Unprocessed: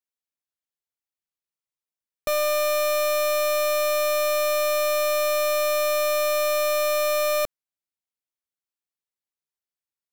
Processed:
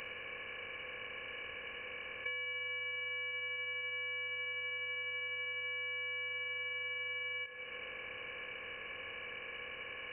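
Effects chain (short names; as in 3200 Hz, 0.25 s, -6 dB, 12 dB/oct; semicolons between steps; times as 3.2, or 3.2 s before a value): per-bin compression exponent 0.4; in parallel at -3.5 dB: sine folder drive 12 dB, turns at -15.5 dBFS; on the sum: limiter -20.5 dBFS, peak gain reduction 4.5 dB; inverted band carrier 2900 Hz; on a send at -15 dB: reverb RT60 1.7 s, pre-delay 35 ms; on the sum: compressor 8:1, threshold -38 dBFS, peak gain reduction 17 dB; gain -1.5 dB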